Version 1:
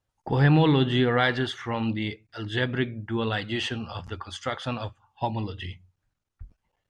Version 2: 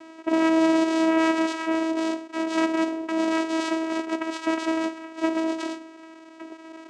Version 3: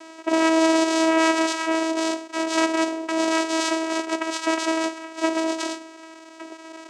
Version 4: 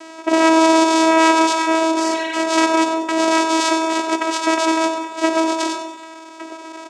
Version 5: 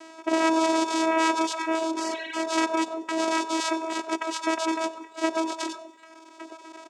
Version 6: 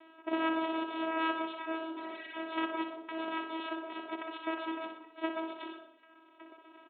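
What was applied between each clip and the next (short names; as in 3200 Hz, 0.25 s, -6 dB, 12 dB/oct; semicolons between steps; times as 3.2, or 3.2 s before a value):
per-bin compression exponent 0.4; low shelf 250 Hz -8 dB; vocoder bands 4, saw 323 Hz
tone controls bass -14 dB, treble +8 dB; gain +4 dB
spectral repair 2.02–2.33, 1500–4500 Hz; feedback echo 94 ms, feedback 46%, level -11 dB; reverb RT60 0.70 s, pre-delay 70 ms, DRR 9 dB; gain +5 dB
reverb removal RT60 0.71 s; gain -7.5 dB
on a send: flutter echo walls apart 10.5 m, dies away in 0.63 s; on the sum: downsampling 8000 Hz; upward expander 1.5:1, over -27 dBFS; gain -8 dB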